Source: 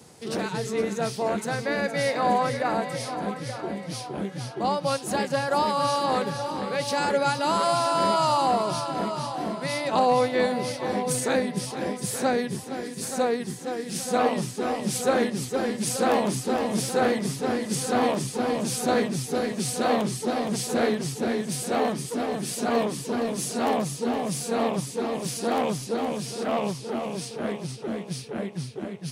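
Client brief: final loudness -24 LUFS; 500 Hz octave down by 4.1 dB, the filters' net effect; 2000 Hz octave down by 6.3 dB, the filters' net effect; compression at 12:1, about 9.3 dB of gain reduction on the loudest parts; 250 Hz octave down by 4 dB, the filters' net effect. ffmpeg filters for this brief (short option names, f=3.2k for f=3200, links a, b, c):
-af "equalizer=f=250:t=o:g=-4,equalizer=f=500:t=o:g=-3.5,equalizer=f=2k:t=o:g=-8,acompressor=threshold=-30dB:ratio=12,volume=10.5dB"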